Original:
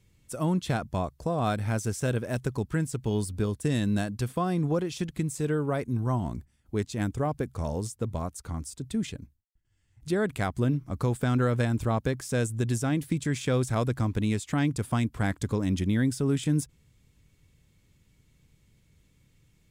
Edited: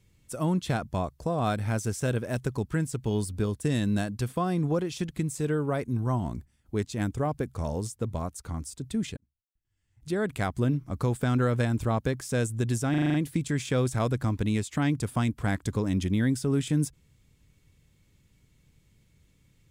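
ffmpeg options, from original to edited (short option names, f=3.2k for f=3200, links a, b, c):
-filter_complex "[0:a]asplit=8[a][b][c][d][e][f][g][h];[a]atrim=end=9.17,asetpts=PTS-STARTPTS,afade=t=out:st=9.166:d=0.004:c=hsin[i];[b]atrim=start=9.17:end=12.942,asetpts=PTS-STARTPTS,afade=t=in:d=1.24[j];[c]atrim=start=12.898:end=12.942[k];[d]atrim=start=12.898:end=12.942[l];[e]atrim=start=12.898:end=12.942[m];[f]atrim=start=12.898:end=12.942[n];[g]atrim=start=12.898:end=12.942[o];[h]atrim=start=12.898[p];[i][j]concat=n=2:v=0:a=1[q];[q][k]acrossfade=d=0.004:c1=hsin:c2=hsin[r];[r][l]acrossfade=d=0.004:c1=hsin:c2=hsin[s];[s][m]acrossfade=d=0.004:c1=hsin:c2=hsin[t];[t][n]acrossfade=d=0.004:c1=hsin:c2=hsin[u];[u][o]acrossfade=d=0.004:c1=hsin:c2=hsin[v];[v][p]acrossfade=d=0.004:c1=hsin:c2=hsin"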